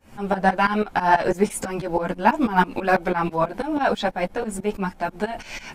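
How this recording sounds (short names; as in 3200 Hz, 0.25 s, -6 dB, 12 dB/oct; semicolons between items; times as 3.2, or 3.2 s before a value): tremolo saw up 6.1 Hz, depth 95%; a shimmering, thickened sound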